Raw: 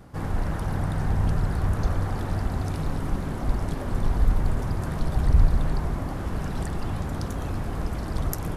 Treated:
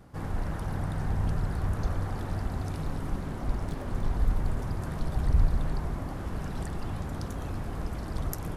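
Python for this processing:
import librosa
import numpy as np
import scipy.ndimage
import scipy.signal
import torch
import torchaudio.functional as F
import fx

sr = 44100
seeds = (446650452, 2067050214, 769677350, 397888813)

y = fx.self_delay(x, sr, depth_ms=0.17, at=(3.2, 4.19))
y = y * 10.0 ** (-5.0 / 20.0)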